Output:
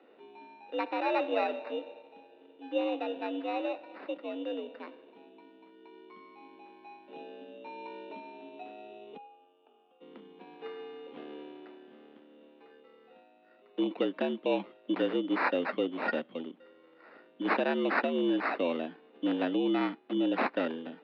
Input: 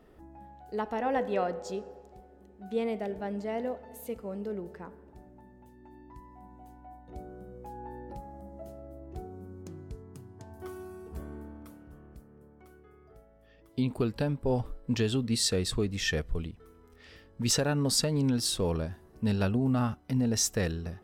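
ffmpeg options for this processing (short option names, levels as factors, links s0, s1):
-filter_complex "[0:a]acrusher=samples=14:mix=1:aa=0.000001,asplit=3[s0][s1][s2];[s0]afade=t=out:st=9.16:d=0.02[s3];[s1]asplit=3[s4][s5][s6];[s4]bandpass=f=730:t=q:w=8,volume=1[s7];[s5]bandpass=f=1090:t=q:w=8,volume=0.501[s8];[s6]bandpass=f=2440:t=q:w=8,volume=0.355[s9];[s7][s8][s9]amix=inputs=3:normalize=0,afade=t=in:st=9.16:d=0.02,afade=t=out:st=10:d=0.02[s10];[s2]afade=t=in:st=10:d=0.02[s11];[s3][s10][s11]amix=inputs=3:normalize=0,highpass=f=160:t=q:w=0.5412,highpass=f=160:t=q:w=1.307,lowpass=f=3400:t=q:w=0.5176,lowpass=f=3400:t=q:w=0.7071,lowpass=f=3400:t=q:w=1.932,afreqshift=77"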